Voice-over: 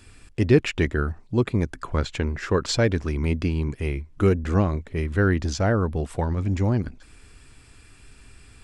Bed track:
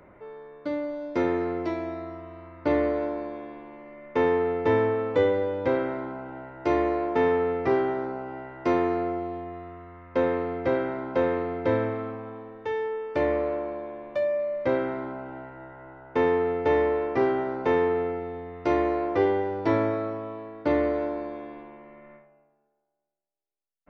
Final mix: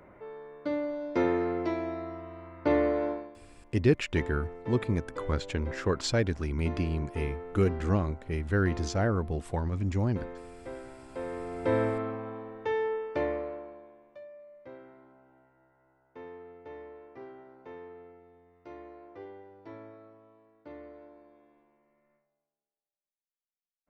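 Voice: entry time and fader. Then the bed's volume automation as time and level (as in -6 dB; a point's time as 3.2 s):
3.35 s, -6.0 dB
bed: 3.11 s -1.5 dB
3.37 s -17 dB
11.05 s -17 dB
11.82 s -0.5 dB
12.92 s -0.5 dB
14.3 s -23 dB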